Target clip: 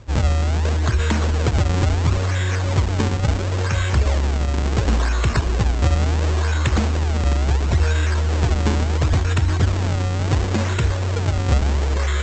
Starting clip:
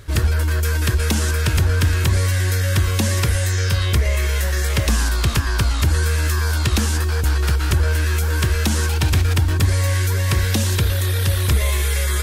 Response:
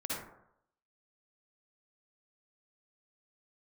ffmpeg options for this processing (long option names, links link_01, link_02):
-af "bandreject=frequency=90.11:width_type=h:width=4,bandreject=frequency=180.22:width_type=h:width=4,bandreject=frequency=270.33:width_type=h:width=4,bandreject=frequency=360.44:width_type=h:width=4,bandreject=frequency=450.55:width_type=h:width=4,bandreject=frequency=540.66:width_type=h:width=4,bandreject=frequency=630.77:width_type=h:width=4,bandreject=frequency=720.88:width_type=h:width=4,bandreject=frequency=810.99:width_type=h:width=4,bandreject=frequency=901.1:width_type=h:width=4,bandreject=frequency=991.21:width_type=h:width=4,bandreject=frequency=1081.32:width_type=h:width=4,bandreject=frequency=1171.43:width_type=h:width=4,bandreject=frequency=1261.54:width_type=h:width=4,bandreject=frequency=1351.65:width_type=h:width=4,bandreject=frequency=1441.76:width_type=h:width=4,bandreject=frequency=1531.87:width_type=h:width=4,bandreject=frequency=1621.98:width_type=h:width=4,bandreject=frequency=1712.09:width_type=h:width=4,bandreject=frequency=1802.2:width_type=h:width=4,bandreject=frequency=1892.31:width_type=h:width=4,bandreject=frequency=1982.42:width_type=h:width=4,bandreject=frequency=2072.53:width_type=h:width=4,bandreject=frequency=2162.64:width_type=h:width=4,bandreject=frequency=2252.75:width_type=h:width=4,bandreject=frequency=2342.86:width_type=h:width=4,bandreject=frequency=2432.97:width_type=h:width=4,bandreject=frequency=2523.08:width_type=h:width=4,bandreject=frequency=2613.19:width_type=h:width=4,bandreject=frequency=2703.3:width_type=h:width=4,bandreject=frequency=2793.41:width_type=h:width=4,bandreject=frequency=2883.52:width_type=h:width=4,bandreject=frequency=2973.63:width_type=h:width=4,bandreject=frequency=3063.74:width_type=h:width=4,bandreject=frequency=3153.85:width_type=h:width=4,bandreject=frequency=3243.96:width_type=h:width=4,bandreject=frequency=3334.07:width_type=h:width=4,bandreject=frequency=3424.18:width_type=h:width=4,aresample=16000,acrusher=samples=14:mix=1:aa=0.000001:lfo=1:lforange=22.4:lforate=0.72,aresample=44100"